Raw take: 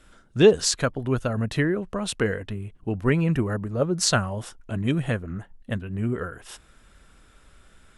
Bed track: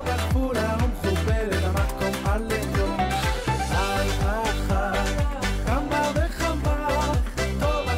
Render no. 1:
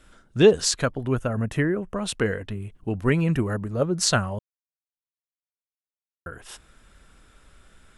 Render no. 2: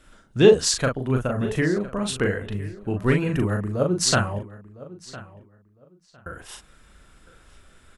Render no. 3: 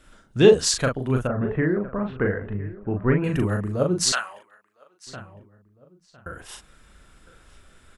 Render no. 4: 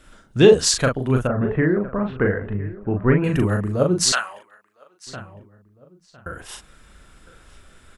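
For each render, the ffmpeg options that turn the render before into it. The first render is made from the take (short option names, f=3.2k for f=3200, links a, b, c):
-filter_complex "[0:a]asettb=1/sr,asplit=3[a][b][c];[a]atrim=end=1.154[d];[b]atrim=start=1.15:end=1.97,asetpts=PTS-STARTPTS,afade=t=in:d=0.004:c=qsin,afade=t=out:st=0.816:d=0.004:c=qsin,equalizer=f=4.2k:w=2.4:g=-13.5[e];[c]atrim=start=1.966[f];[d][e]acrossfade=d=0.004:c1=hsin:c2=qsin[g];[g][f]acrossfade=d=0.004:c1=qsin:c2=hsin,asettb=1/sr,asplit=3[h][i][j];[h]atrim=end=2.614[k];[i]atrim=start=2.61:end=3.83,asetpts=PTS-STARTPTS,afade=t=in:d=0.004:c=qsin,afade=t=out:st=1.216:d=0.004:c=qsin,highshelf=f=4.4k:g=4[l];[j]atrim=start=3.826[m];[k][l]acrossfade=d=0.004:c1=hsin:c2=qsin[n];[n][m]acrossfade=d=0.004:c1=qsin:c2=hsin,asplit=3[o][p][q];[o]atrim=end=4.39,asetpts=PTS-STARTPTS,afade=t=out:st=4.386:d=0.004:c=hsin[r];[p]atrim=start=4.39:end=6.26,asetpts=PTS-STARTPTS,volume=0[s];[q]atrim=start=6.26,asetpts=PTS-STARTPTS,afade=t=in:d=0.004:c=hsin[t];[r][s][t]concat=n=3:v=0:a=1"
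-filter_complex "[0:a]asplit=2[a][b];[b]adelay=39,volume=-4dB[c];[a][c]amix=inputs=2:normalize=0,asplit=2[d][e];[e]adelay=1007,lowpass=f=4.5k:p=1,volume=-18dB,asplit=2[f][g];[g]adelay=1007,lowpass=f=4.5k:p=1,volume=0.21[h];[d][f][h]amix=inputs=3:normalize=0"
-filter_complex "[0:a]asettb=1/sr,asplit=3[a][b][c];[a]atrim=end=1.274[d];[b]atrim=start=1.27:end=3.24,asetpts=PTS-STARTPTS,afade=t=in:d=0.004:c=qsin,afade=t=out:st=1.966:d=0.004:c=qsin,lowpass=f=1.9k:w=0.5412,lowpass=f=1.9k:w=1.3066[e];[c]atrim=start=3.236[f];[d][e]acrossfade=d=0.004:c1=hsin:c2=qsin[g];[g][f]acrossfade=d=0.004:c1=qsin:c2=hsin,asettb=1/sr,asplit=3[h][i][j];[h]atrim=end=4.124[k];[i]atrim=start=4.12:end=5.07,asetpts=PTS-STARTPTS,afade=t=in:d=0.004:c=qsin,afade=t=out:st=0.946:d=0.004:c=qsin,highpass=1.2k[l];[j]atrim=start=5.066[m];[k][l]acrossfade=d=0.004:c1=hsin:c2=qsin[n];[n][m]acrossfade=d=0.004:c1=qsin:c2=hsin"
-af "volume=3.5dB,alimiter=limit=-2dB:level=0:latency=1"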